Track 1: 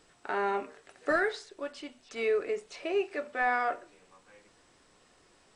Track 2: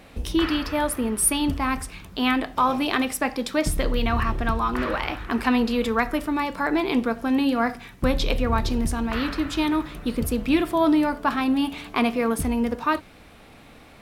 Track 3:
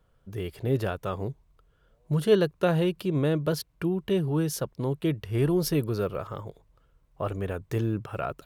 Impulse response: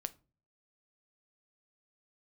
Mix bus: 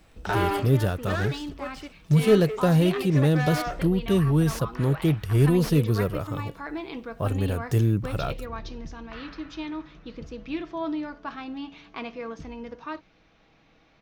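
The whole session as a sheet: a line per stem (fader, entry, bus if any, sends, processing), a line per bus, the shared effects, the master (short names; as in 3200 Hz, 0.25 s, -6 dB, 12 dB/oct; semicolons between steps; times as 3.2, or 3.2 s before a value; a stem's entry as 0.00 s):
+1.5 dB, 0.00 s, no send, sample leveller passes 3; auto duck -11 dB, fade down 0.95 s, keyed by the third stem
-12.0 dB, 0.00 s, no send, elliptic low-pass 6300 Hz; comb 6.2 ms, depth 36%
0.0 dB, 0.00 s, no send, tone controls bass +8 dB, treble +12 dB; slew limiter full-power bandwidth 110 Hz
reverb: off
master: dry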